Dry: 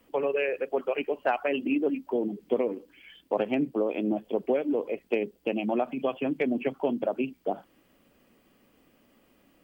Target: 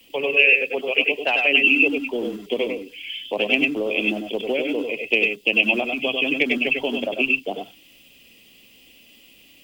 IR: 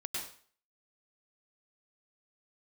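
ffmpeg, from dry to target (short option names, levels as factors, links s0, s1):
-filter_complex "[0:a]highshelf=f=2000:t=q:w=3:g=11.5,acrossover=split=160|1100[s0][s1][s2];[s0]aeval=exprs='(mod(224*val(0)+1,2)-1)/224':c=same[s3];[s3][s1][s2]amix=inputs=3:normalize=0[s4];[1:a]atrim=start_sample=2205,afade=t=out:st=0.15:d=0.01,atrim=end_sample=7056[s5];[s4][s5]afir=irnorm=-1:irlink=0,volume=2"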